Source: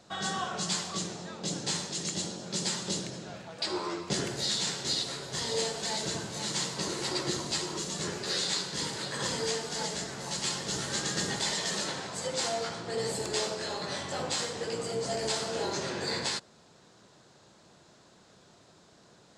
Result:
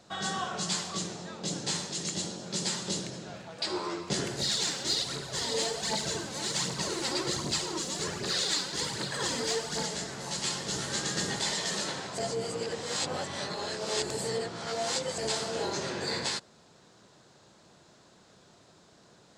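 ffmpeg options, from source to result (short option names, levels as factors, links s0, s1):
-filter_complex "[0:a]asettb=1/sr,asplit=3[s0][s1][s2];[s0]atrim=end=4.404[s3];[s1]atrim=start=4.4:end=9.86,asetpts=PTS-STARTPTS,afade=t=in:d=0.004:c=qsin,afade=t=out:st=5.456:d=0.004:c=qsin,aphaser=in_gain=1:out_gain=1:delay=4.1:decay=0.5:speed=1.3:type=triangular[s4];[s2]atrim=start=9.856[s5];[s3][s4]acrossfade=d=0.004:c1=hsin:c2=qsin[s6];[s6][s5]acrossfade=d=0.004:c1=qsin:c2=hsin,asplit=3[s7][s8][s9];[s7]atrim=end=12.182[s10];[s8]atrim=start=12.178:end=15.182,asetpts=PTS-STARTPTS,areverse[s11];[s9]atrim=start=15.178[s12];[s10][s11]acrossfade=d=0.004:c1=hsin:c2=hsin[s13];[s13][s12]acrossfade=d=0.004:c1=hsin:c2=hsin"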